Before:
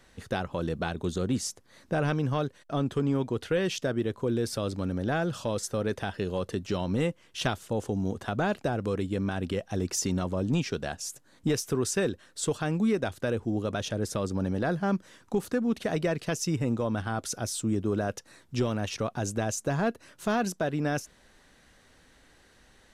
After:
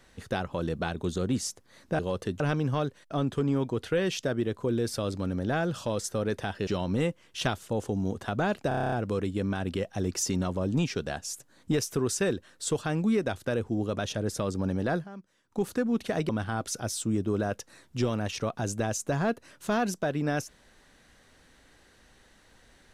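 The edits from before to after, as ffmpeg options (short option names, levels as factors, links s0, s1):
-filter_complex "[0:a]asplit=15[s0][s1][s2][s3][s4][s5][s6][s7][s8][s9][s10][s11][s12][s13][s14];[s0]atrim=end=1.992[s15];[s1]atrim=start=6.258:end=6.672[s16];[s2]atrim=start=1.988:end=6.262[s17];[s3]atrim=start=6.668:end=8.712[s18];[s4]atrim=start=8.678:end=8.712[s19];[s5]atrim=start=8.678:end=8.712[s20];[s6]atrim=start=8.678:end=8.712[s21];[s7]atrim=start=8.678:end=8.712[s22];[s8]atrim=start=8.678:end=8.712[s23];[s9]atrim=start=8.678:end=8.712[s24];[s10]atrim=start=8.678:end=8.712[s25];[s11]atrim=start=8.678:end=14.84,asetpts=PTS-STARTPTS,afade=t=out:st=6.032:d=0.13:silence=0.141254[s26];[s12]atrim=start=14.84:end=15.25,asetpts=PTS-STARTPTS,volume=0.141[s27];[s13]atrim=start=15.25:end=16.052,asetpts=PTS-STARTPTS,afade=t=in:d=0.13:silence=0.141254[s28];[s14]atrim=start=16.868[s29];[s15][s16]acrossfade=d=0.004:c1=hsin:c2=hsin[s30];[s30][s17]acrossfade=d=0.004:c1=hsin:c2=hsin[s31];[s31][s18]acrossfade=d=0.004:c1=hsin:c2=hsin[s32];[s32][s19]acrossfade=d=0.004:c1=hsin:c2=hsin[s33];[s33][s20]acrossfade=d=0.004:c1=hsin:c2=hsin[s34];[s34][s21]acrossfade=d=0.004:c1=hsin:c2=hsin[s35];[s35][s22]acrossfade=d=0.004:c1=hsin:c2=hsin[s36];[s36][s23]acrossfade=d=0.004:c1=hsin:c2=hsin[s37];[s37][s24]acrossfade=d=0.004:c1=hsin:c2=hsin[s38];[s38][s25]acrossfade=d=0.004:c1=hsin:c2=hsin[s39];[s26][s27][s28]concat=n=3:v=0:a=1[s40];[s39][s40]acrossfade=d=0.004:c1=hsin:c2=hsin[s41];[s41][s29]acrossfade=d=0.004:c1=hsin:c2=hsin"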